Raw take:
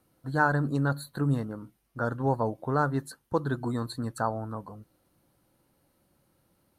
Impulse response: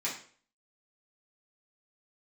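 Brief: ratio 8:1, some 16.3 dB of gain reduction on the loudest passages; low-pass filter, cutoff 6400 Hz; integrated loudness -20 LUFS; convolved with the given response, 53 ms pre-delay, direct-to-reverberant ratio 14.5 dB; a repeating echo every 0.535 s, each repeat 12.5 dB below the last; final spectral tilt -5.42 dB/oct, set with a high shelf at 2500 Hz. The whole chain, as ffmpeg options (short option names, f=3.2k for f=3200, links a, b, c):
-filter_complex "[0:a]lowpass=6.4k,highshelf=f=2.5k:g=-6,acompressor=threshold=-38dB:ratio=8,aecho=1:1:535|1070|1605:0.237|0.0569|0.0137,asplit=2[a][b];[1:a]atrim=start_sample=2205,adelay=53[c];[b][c]afir=irnorm=-1:irlink=0,volume=-20dB[d];[a][d]amix=inputs=2:normalize=0,volume=23dB"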